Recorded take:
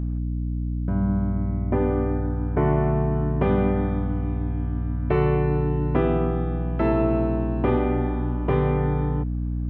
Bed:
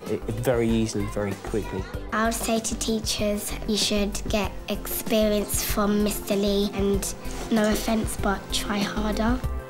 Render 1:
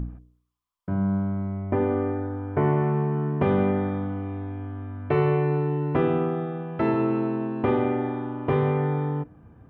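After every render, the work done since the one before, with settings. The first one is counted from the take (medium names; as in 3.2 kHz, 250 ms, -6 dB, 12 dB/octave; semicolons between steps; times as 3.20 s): de-hum 60 Hz, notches 11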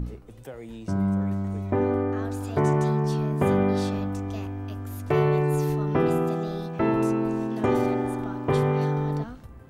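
add bed -17.5 dB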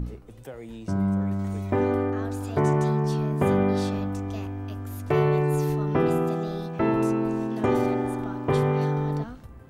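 1.39–2.10 s: treble shelf 2.3 kHz +8.5 dB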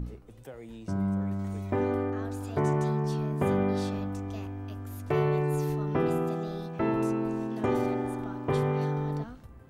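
trim -4.5 dB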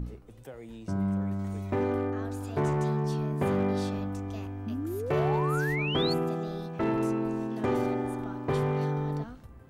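hard clipper -21.5 dBFS, distortion -19 dB; 4.66–6.14 s: painted sound rise 210–4600 Hz -34 dBFS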